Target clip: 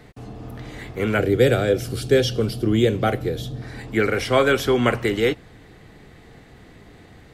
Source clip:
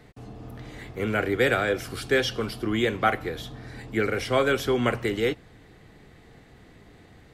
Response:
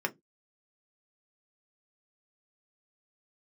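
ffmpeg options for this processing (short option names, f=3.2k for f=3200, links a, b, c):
-filter_complex "[0:a]asettb=1/sr,asplit=3[a][b][c];[a]atrim=end=1.184[d];[b]atrim=start=1.18:end=3.62,asetpts=PTS-STARTPTS,afade=t=in:d=0.004:c=qsin,afade=t=out:st=2.436:d=0.004:c=qsin,equalizer=f=125:t=o:w=1:g=7,equalizer=f=500:t=o:w=1:g=4,equalizer=f=1k:t=o:w=1:g=-10,equalizer=f=2k:t=o:w=1:g=-7[e];[c]atrim=start=3.616[f];[d][e]acrossfade=d=0.004:c1=hsin:c2=qsin[g];[g][f]acrossfade=d=0.004:c1=qsin:c2=hsin,volume=5dB"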